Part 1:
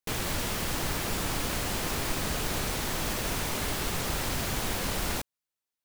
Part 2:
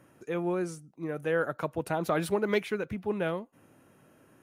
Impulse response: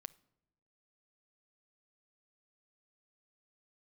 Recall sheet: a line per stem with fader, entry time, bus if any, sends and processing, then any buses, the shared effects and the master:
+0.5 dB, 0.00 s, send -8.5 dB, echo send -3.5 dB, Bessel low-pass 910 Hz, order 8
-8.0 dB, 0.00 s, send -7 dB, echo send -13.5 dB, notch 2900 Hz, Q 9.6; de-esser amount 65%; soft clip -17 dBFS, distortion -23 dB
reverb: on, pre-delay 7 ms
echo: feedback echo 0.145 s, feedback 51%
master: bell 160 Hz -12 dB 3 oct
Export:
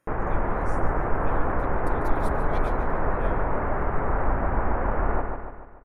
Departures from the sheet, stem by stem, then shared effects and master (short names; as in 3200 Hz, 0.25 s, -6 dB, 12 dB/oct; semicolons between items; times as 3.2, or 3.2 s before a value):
stem 1 +0.5 dB -> +11.5 dB; stem 2: send off